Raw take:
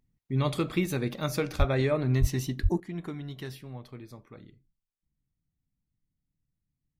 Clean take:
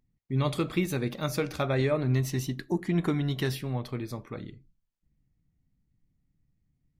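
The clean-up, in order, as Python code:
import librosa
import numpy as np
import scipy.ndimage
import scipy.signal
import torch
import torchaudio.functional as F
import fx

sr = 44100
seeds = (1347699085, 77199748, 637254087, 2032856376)

y = fx.highpass(x, sr, hz=140.0, slope=24, at=(1.58, 1.7), fade=0.02)
y = fx.highpass(y, sr, hz=140.0, slope=24, at=(2.2, 2.32), fade=0.02)
y = fx.highpass(y, sr, hz=140.0, slope=24, at=(2.62, 2.74), fade=0.02)
y = fx.fix_level(y, sr, at_s=2.8, step_db=10.0)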